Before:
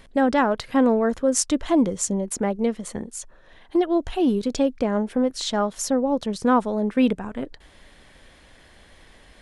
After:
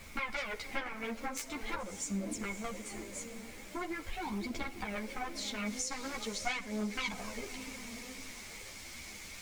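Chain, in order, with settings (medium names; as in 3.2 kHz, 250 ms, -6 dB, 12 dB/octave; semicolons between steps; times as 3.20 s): single-diode clipper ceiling -11 dBFS; low-pass 9.3 kHz; echo that smears into a reverb 575 ms, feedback 44%, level -14 dB; Chebyshev shaper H 3 -7 dB, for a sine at -7.5 dBFS; phaser 0.44 Hz, delay 4.5 ms, feedback 57%; added noise pink -51 dBFS; peaking EQ 6.2 kHz +3.5 dB 1.7 oct, from 5.66 s +12.5 dB; compression 6:1, threshold -32 dBFS, peak gain reduction 13 dB; peaking EQ 2.2 kHz +15 dB 0.22 oct; reverberation RT60 0.65 s, pre-delay 32 ms, DRR 17 dB; three-phase chorus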